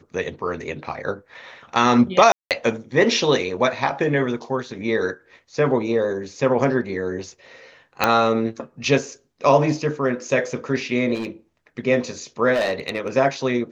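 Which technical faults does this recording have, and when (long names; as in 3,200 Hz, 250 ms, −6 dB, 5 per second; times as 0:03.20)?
0:02.32–0:02.51: drop-out 188 ms
0:08.04: click −2 dBFS
0:11.14–0:11.28: clipping −22.5 dBFS
0:12.53–0:13.17: clipping −17 dBFS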